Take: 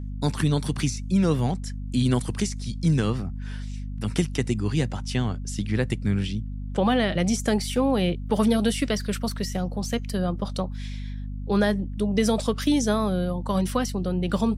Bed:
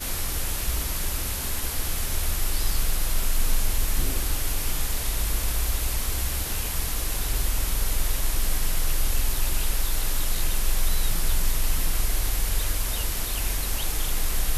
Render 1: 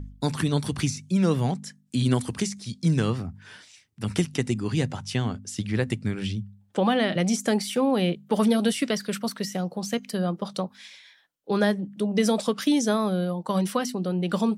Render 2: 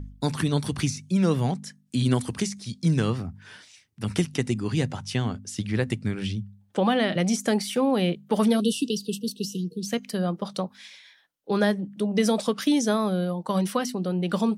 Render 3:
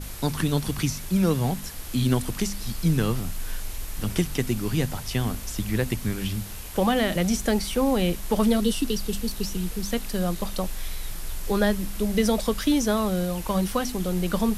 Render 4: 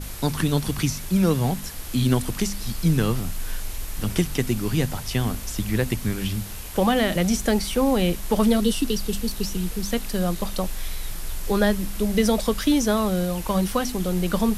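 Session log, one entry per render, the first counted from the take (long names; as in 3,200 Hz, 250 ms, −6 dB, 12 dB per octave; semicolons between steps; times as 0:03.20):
hum removal 50 Hz, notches 5
0:08.61–0:09.87: time-frequency box erased 490–2,600 Hz; notch filter 7,500 Hz, Q 25
mix in bed −9.5 dB
level +2 dB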